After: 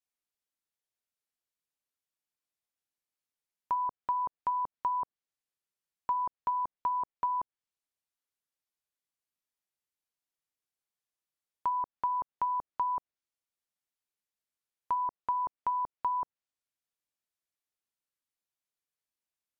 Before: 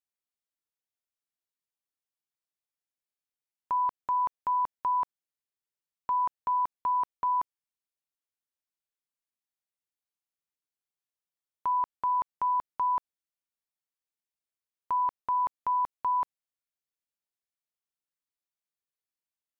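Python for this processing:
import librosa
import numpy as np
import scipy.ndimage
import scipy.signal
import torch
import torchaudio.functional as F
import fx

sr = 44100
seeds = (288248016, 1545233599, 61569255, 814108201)

y = fx.env_lowpass_down(x, sr, base_hz=840.0, full_db=-25.0)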